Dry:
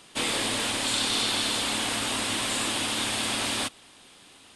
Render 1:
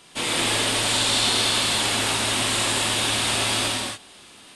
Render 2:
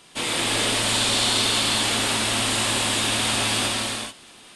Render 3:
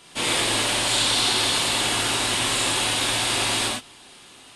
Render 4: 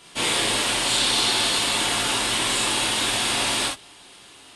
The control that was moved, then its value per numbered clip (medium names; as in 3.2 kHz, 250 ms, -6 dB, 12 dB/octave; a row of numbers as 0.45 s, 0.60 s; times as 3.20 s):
gated-style reverb, gate: 310 ms, 460 ms, 140 ms, 90 ms